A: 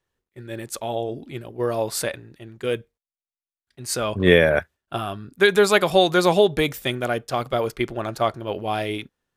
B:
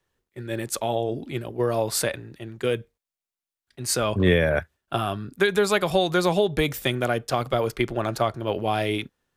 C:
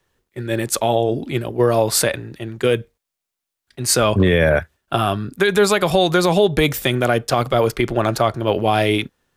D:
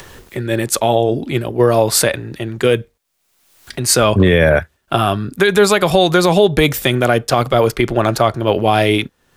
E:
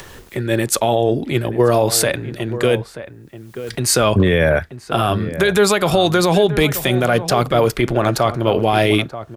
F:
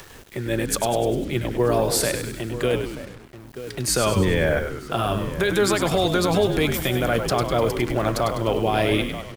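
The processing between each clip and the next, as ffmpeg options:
-filter_complex "[0:a]acrossover=split=140[a][b];[b]acompressor=threshold=-25dB:ratio=2.5[c];[a][c]amix=inputs=2:normalize=0,volume=3.5dB"
-af "alimiter=level_in=12dB:limit=-1dB:release=50:level=0:latency=1,volume=-4dB"
-af "acompressor=mode=upward:threshold=-21dB:ratio=2.5,volume=3.5dB"
-filter_complex "[0:a]alimiter=limit=-5dB:level=0:latency=1:release=40,asplit=2[a][b];[b]adelay=932.9,volume=-12dB,highshelf=f=4k:g=-21[c];[a][c]amix=inputs=2:normalize=0"
-filter_complex "[0:a]asplit=7[a][b][c][d][e][f][g];[b]adelay=100,afreqshift=-74,volume=-7.5dB[h];[c]adelay=200,afreqshift=-148,volume=-13.2dB[i];[d]adelay=300,afreqshift=-222,volume=-18.9dB[j];[e]adelay=400,afreqshift=-296,volume=-24.5dB[k];[f]adelay=500,afreqshift=-370,volume=-30.2dB[l];[g]adelay=600,afreqshift=-444,volume=-35.9dB[m];[a][h][i][j][k][l][m]amix=inputs=7:normalize=0,acrusher=bits=5:mix=0:aa=0.5,volume=-6.5dB"

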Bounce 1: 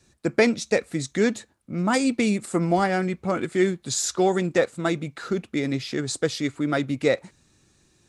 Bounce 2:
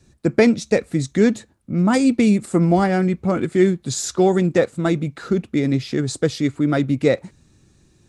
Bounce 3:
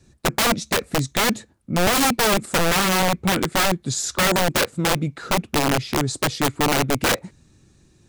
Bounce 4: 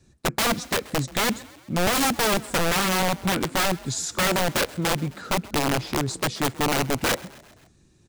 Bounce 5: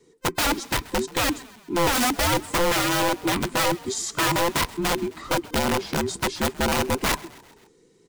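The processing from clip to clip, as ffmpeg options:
-af "lowshelf=f=390:g=10"
-af "aeval=exprs='(mod(4.73*val(0)+1,2)-1)/4.73':c=same"
-filter_complex "[0:a]asplit=5[a][b][c][d][e];[b]adelay=131,afreqshift=39,volume=-21dB[f];[c]adelay=262,afreqshift=78,volume=-25.9dB[g];[d]adelay=393,afreqshift=117,volume=-30.8dB[h];[e]adelay=524,afreqshift=156,volume=-35.6dB[i];[a][f][g][h][i]amix=inputs=5:normalize=0,volume=-3.5dB"
-af "afftfilt=real='real(if(between(b,1,1008),(2*floor((b-1)/24)+1)*24-b,b),0)':imag='imag(if(between(b,1,1008),(2*floor((b-1)/24)+1)*24-b,b),0)*if(between(b,1,1008),-1,1)':win_size=2048:overlap=0.75"

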